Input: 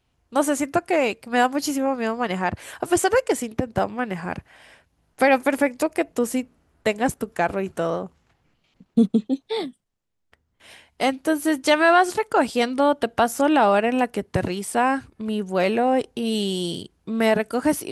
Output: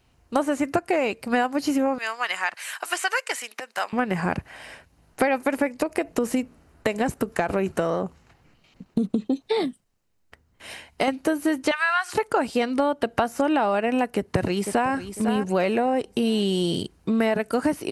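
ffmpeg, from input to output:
-filter_complex "[0:a]asettb=1/sr,asplit=3[s0][s1][s2];[s0]atrim=end=1.984[s3];[s1]atrim=start=1.98:end=3.93,asetpts=PTS-STARTPTS,afade=t=in:d=0.004:c=qsin,afade=t=out:st=1.946:d=0.004:c=qsin,highpass=1500[s4];[s2]atrim=start=3.926[s5];[s3][s4]acrossfade=d=0.004:c1=hsin:c2=qsin[s6];[s6][s5]acrossfade=d=0.004:c1=qsin:c2=hsin,asettb=1/sr,asplit=3[s7][s8][s9];[s7]atrim=end=5.834[s10];[s8]atrim=start=5.83:end=11.08,asetpts=PTS-STARTPTS,afade=t=in:d=0.004:c=qsin,afade=t=out:st=5.246:d=0.004:c=qsin,acompressor=threshold=0.0891:ratio=4:attack=3.2:release=140:knee=1:detection=peak[s11];[s9]atrim=start=11.076[s12];[s10][s11]acrossfade=d=0.004:c1=hsin:c2=qsin[s13];[s13][s12]acrossfade=d=0.004:c1=qsin:c2=hsin,asettb=1/sr,asplit=3[s14][s15][s16];[s14]atrim=end=11.714[s17];[s15]atrim=start=11.71:end=12.13,asetpts=PTS-STARTPTS,afade=t=in:d=0.004:c=qsin,afade=t=out:st=0.416:d=0.004:c=qsin,highpass=f=1100:w=0.5412,highpass=f=1100:w=1.3066[s18];[s16]atrim=start=12.126[s19];[s17][s18]acrossfade=d=0.004:c1=hsin:c2=qsin[s20];[s20][s19]acrossfade=d=0.004:c1=qsin:c2=hsin,asplit=2[s21][s22];[s22]afade=t=in:st=14.16:d=0.01,afade=t=out:st=14.93:d=0.01,aecho=0:1:500|1000|1500:0.237137|0.0711412|0.0213424[s23];[s21][s23]amix=inputs=2:normalize=0,acrossover=split=3700[s24][s25];[s25]acompressor=threshold=0.01:ratio=4:attack=1:release=60[s26];[s24][s26]amix=inputs=2:normalize=0,bandreject=f=3400:w=12,acompressor=threshold=0.0447:ratio=6,volume=2.37"

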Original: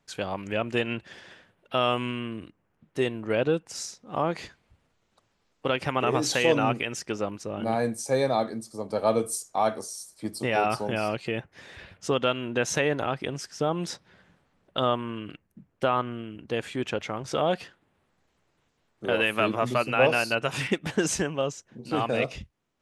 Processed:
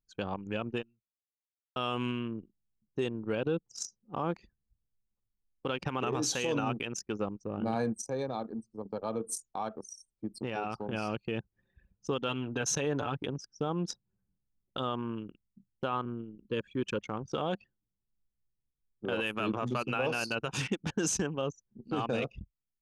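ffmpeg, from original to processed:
-filter_complex "[0:a]asettb=1/sr,asplit=3[s0][s1][s2];[s0]atrim=end=7.964[s3];[s1]atrim=start=7.96:end=10.93,asetpts=PTS-STARTPTS,afade=t=in:d=0.004:c=qsin,afade=t=out:st=2.966:d=0.004:c=qsin,acompressor=threshold=0.0282:ratio=2:attack=3.2:release=140:knee=1:detection=peak[s4];[s2]atrim=start=10.926[s5];[s3][s4]acrossfade=d=0.004:c1=hsin:c2=qsin[s6];[s6][s5]acrossfade=d=0.004:c1=qsin:c2=hsin,asettb=1/sr,asplit=3[s7][s8][s9];[s7]atrim=end=12.284[s10];[s8]atrim=start=12.28:end=13.27,asetpts=PTS-STARTPTS,afade=t=in:d=0.004:c=qsin,afade=t=out:st=0.986:d=0.004:c=qsin,aecho=1:1:6.9:0.55,atrim=end_sample=43659[s11];[s9]atrim=start=13.266[s12];[s10][s11]acrossfade=d=0.004:c1=hsin:c2=qsin[s13];[s13][s12]acrossfade=d=0.004:c1=qsin:c2=hsin,asettb=1/sr,asplit=3[s14][s15][s16];[s14]atrim=end=16.054[s17];[s15]atrim=start=16.05:end=17.01,asetpts=PTS-STARTPTS,afade=t=in:d=0.004:c=qsin,afade=t=out:st=0.956:d=0.004:c=qsin,asuperstop=centerf=740:order=20:qfactor=2.8[s18];[s16]atrim=start=17.006[s19];[s17][s18]acrossfade=d=0.004:c1=hsin:c2=qsin[s20];[s20][s19]acrossfade=d=0.004:c1=qsin:c2=hsin,asplit=2[s21][s22];[s21]atrim=end=1.76,asetpts=PTS-STARTPTS,afade=t=out:st=0.72:d=1.04:c=exp[s23];[s22]atrim=start=1.76,asetpts=PTS-STARTPTS,afade=t=in:d=0.004:c=hsin[s24];[s23][s24]concat=n=2:v=0:a=1,anlmdn=10,equalizer=f=200:t=o:w=0.33:g=3,equalizer=f=630:t=o:w=0.33:g=-7,equalizer=f=2000:t=o:w=0.33:g=-9,equalizer=f=6300:t=o:w=0.33:g=7,alimiter=limit=0.106:level=0:latency=1:release=50,volume=0.794"

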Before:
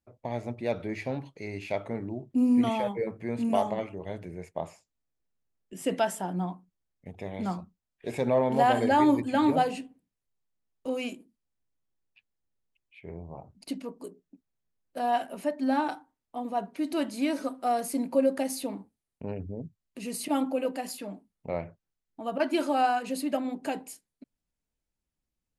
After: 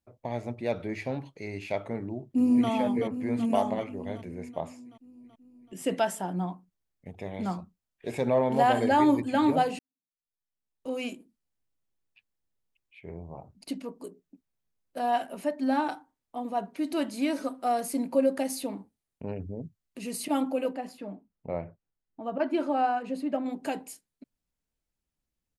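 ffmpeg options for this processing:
-filter_complex "[0:a]asplit=2[s0][s1];[s1]afade=t=in:st=1.99:d=0.01,afade=t=out:st=2.69:d=0.01,aecho=0:1:380|760|1140|1520|1900|2280|2660|3040|3420:0.421697|0.274103|0.178167|0.115808|0.0752755|0.048929|0.0318039|0.0206725|0.0134371[s2];[s0][s2]amix=inputs=2:normalize=0,asettb=1/sr,asplit=3[s3][s4][s5];[s3]atrim=end=20.734[s6];[s4]atrim=start=20.73:end=23.46,asetpts=PTS-STARTPTS,afade=t=in:d=0.004:c=qsin,afade=t=out:st=2.726:d=0.004:c=qsin,lowpass=f=1300:p=1[s7];[s5]atrim=start=23.456[s8];[s6][s7]acrossfade=d=0.004:c1=hsin:c2=qsin[s9];[s9][s8]acrossfade=d=0.004:c1=qsin:c2=hsin,asplit=2[s10][s11];[s10]atrim=end=9.79,asetpts=PTS-STARTPTS,afade=t=out:st=9.786:d=0.004:c=hsin[s12];[s11]atrim=start=9.79,asetpts=PTS-STARTPTS,afade=t=in:d=1.26:c=qua[s13];[s12][s13]concat=n=2:v=0:a=1"

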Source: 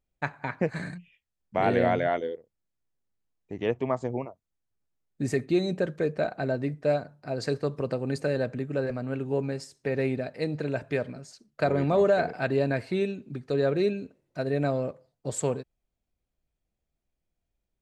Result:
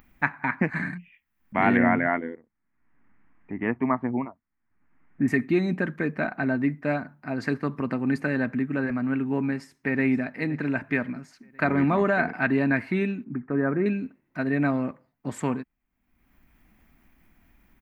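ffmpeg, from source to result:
-filter_complex "[0:a]asettb=1/sr,asplit=3[s0][s1][s2];[s0]atrim=end=1.774[s3];[s1]atrim=start=1.77:end=5.28,asetpts=PTS-STARTPTS,afade=t=in:d=0.004:c=qsin,afade=t=out:st=3.506:d=0.004:c=qsin,lowpass=f=2200:w=0.5412,lowpass=f=2200:w=1.3066[s4];[s2]atrim=start=5.276[s5];[s3][s4]acrossfade=d=0.004:c1=hsin:c2=qsin[s6];[s6][s5]acrossfade=d=0.004:c1=qsin:c2=hsin,asplit=2[s7][s8];[s8]afade=t=in:st=9.46:d=0.01,afade=t=out:st=10.03:d=0.01,aecho=0:1:520|1040|1560:0.141254|0.0494388|0.0173036[s9];[s7][s9]amix=inputs=2:normalize=0,asettb=1/sr,asplit=3[s10][s11][s12];[s10]atrim=end=13.244[s13];[s11]atrim=start=13.24:end=13.86,asetpts=PTS-STARTPTS,afade=t=in:d=0.004:c=qsin,afade=t=out:st=0.616:d=0.004:c=qsin,lowpass=f=1700:w=0.5412,lowpass=f=1700:w=1.3066[s14];[s12]atrim=start=13.856[s15];[s13][s14]acrossfade=d=0.004:c1=hsin:c2=qsin[s16];[s16][s15]acrossfade=d=0.004:c1=qsin:c2=hsin,equalizer=f=125:t=o:w=1:g=-3,equalizer=f=250:t=o:w=1:g=12,equalizer=f=500:t=o:w=1:g=-11,equalizer=f=1000:t=o:w=1:g=7,equalizer=f=2000:t=o:w=1:g=11,equalizer=f=4000:t=o:w=1:g=-7,equalizer=f=8000:t=o:w=1:g=-12,acompressor=mode=upward:threshold=0.00891:ratio=2.5,highshelf=f=8300:g=7.5"

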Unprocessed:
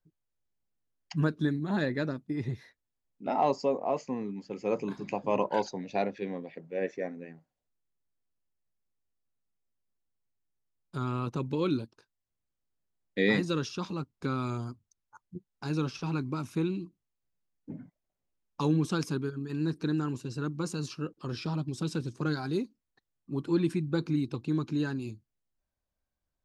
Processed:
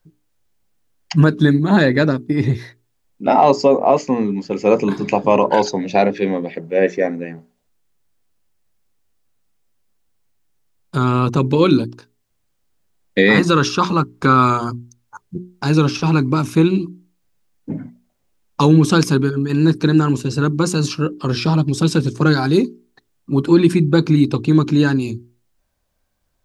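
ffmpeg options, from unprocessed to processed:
-filter_complex "[0:a]asettb=1/sr,asplit=3[s0][s1][s2];[s0]atrim=end=13.234[s3];[s1]atrim=start=13.23:end=14.7,asetpts=PTS-STARTPTS,afade=t=in:d=0.004:c=qsin,afade=t=out:st=1.466:d=0.004:c=qsin,equalizer=f=1200:w=1.4:g=8.5[s4];[s2]atrim=start=14.696[s5];[s3][s4]acrossfade=d=0.004:c1=hsin:c2=qsin[s6];[s6][s5]acrossfade=d=0.004:c1=qsin:c2=hsin,bandreject=f=60:t=h:w=6,bandreject=f=120:t=h:w=6,bandreject=f=180:t=h:w=6,bandreject=f=240:t=h:w=6,bandreject=f=300:t=h:w=6,bandreject=f=360:t=h:w=6,bandreject=f=420:t=h:w=6,alimiter=level_in=7.94:limit=0.891:release=50:level=0:latency=1,volume=0.891"

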